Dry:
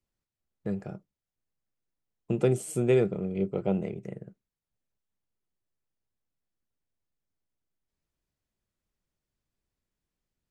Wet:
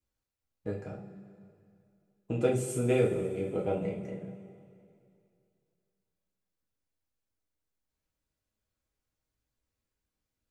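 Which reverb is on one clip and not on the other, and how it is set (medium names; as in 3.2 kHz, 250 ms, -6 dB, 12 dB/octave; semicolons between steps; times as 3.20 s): two-slope reverb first 0.32 s, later 2.5 s, from -16 dB, DRR -3.5 dB; trim -5 dB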